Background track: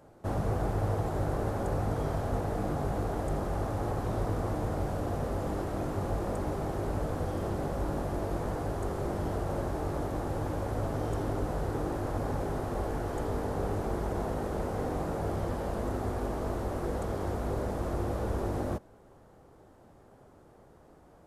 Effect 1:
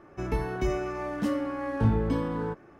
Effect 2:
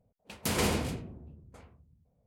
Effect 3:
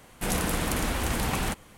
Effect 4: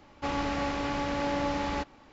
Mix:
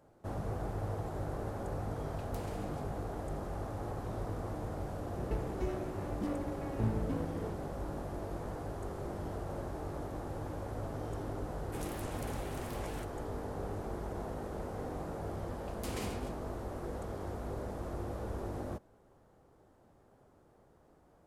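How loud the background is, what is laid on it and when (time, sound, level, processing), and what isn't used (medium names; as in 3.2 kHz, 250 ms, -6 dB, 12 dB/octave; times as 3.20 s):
background track -7.5 dB
1.89 s: add 2 -11.5 dB + compression, threshold -37 dBFS
4.99 s: add 1 -8.5 dB + local Wiener filter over 41 samples
11.51 s: add 3 -18 dB + warped record 78 rpm, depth 250 cents
15.38 s: add 2 -13 dB
not used: 4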